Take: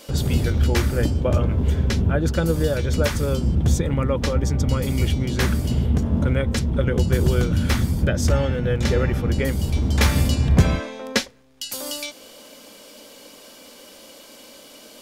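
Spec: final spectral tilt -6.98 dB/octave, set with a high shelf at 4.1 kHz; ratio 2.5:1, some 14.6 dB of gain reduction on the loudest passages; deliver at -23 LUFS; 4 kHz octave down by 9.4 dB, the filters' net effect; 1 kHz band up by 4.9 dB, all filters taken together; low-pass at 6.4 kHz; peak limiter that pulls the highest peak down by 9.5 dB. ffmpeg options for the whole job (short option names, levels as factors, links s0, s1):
-af "lowpass=6400,equalizer=f=1000:t=o:g=7.5,equalizer=f=4000:t=o:g=-8.5,highshelf=f=4100:g=-7,acompressor=threshold=0.0251:ratio=2.5,volume=3.35,alimiter=limit=0.224:level=0:latency=1"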